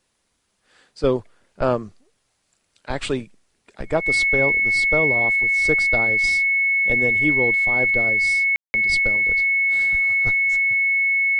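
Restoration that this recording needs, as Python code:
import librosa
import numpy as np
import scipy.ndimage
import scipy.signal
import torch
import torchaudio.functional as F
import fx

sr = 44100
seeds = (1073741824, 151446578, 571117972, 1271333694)

y = fx.notch(x, sr, hz=2200.0, q=30.0)
y = fx.fix_ambience(y, sr, seeds[0], print_start_s=0.08, print_end_s=0.58, start_s=8.56, end_s=8.74)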